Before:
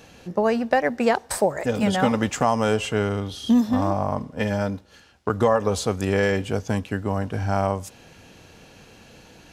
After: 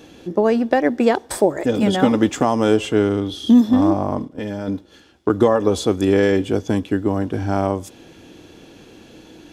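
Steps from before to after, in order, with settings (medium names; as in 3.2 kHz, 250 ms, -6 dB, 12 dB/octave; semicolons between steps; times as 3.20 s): 4.25–4.68 s: level held to a coarse grid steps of 10 dB; small resonant body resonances 320/3400 Hz, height 14 dB, ringing for 30 ms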